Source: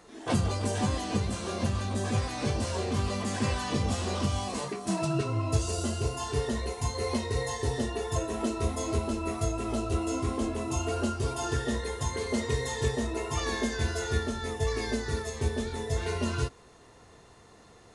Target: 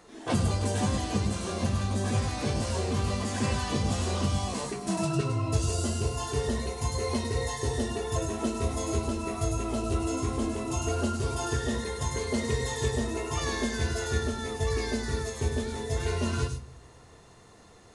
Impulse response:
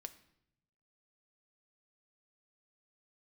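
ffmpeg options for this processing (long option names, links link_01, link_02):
-filter_complex "[0:a]asplit=2[link_01][link_02];[link_02]bass=frequency=250:gain=12,treble=frequency=4000:gain=13[link_03];[1:a]atrim=start_sample=2205,adelay=102[link_04];[link_03][link_04]afir=irnorm=-1:irlink=0,volume=-9dB[link_05];[link_01][link_05]amix=inputs=2:normalize=0"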